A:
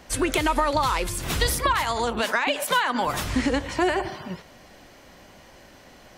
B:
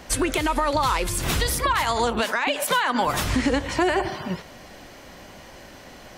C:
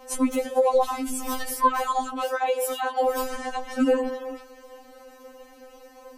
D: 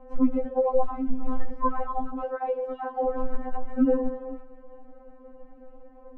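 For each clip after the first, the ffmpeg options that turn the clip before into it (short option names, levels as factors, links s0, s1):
-af "alimiter=limit=0.133:level=0:latency=1:release=313,volume=1.88"
-af "equalizer=f=125:t=o:w=1:g=-9,equalizer=f=250:t=o:w=1:g=-9,equalizer=f=500:t=o:w=1:g=6,equalizer=f=1000:t=o:w=1:g=3,equalizer=f=2000:t=o:w=1:g=-8,equalizer=f=4000:t=o:w=1:g=-8,equalizer=f=8000:t=o:w=1:g=-3,afreqshift=-91,afftfilt=real='re*3.46*eq(mod(b,12),0)':imag='im*3.46*eq(mod(b,12),0)':win_size=2048:overlap=0.75"
-af "lowpass=1300,aemphasis=mode=reproduction:type=riaa,volume=0.531"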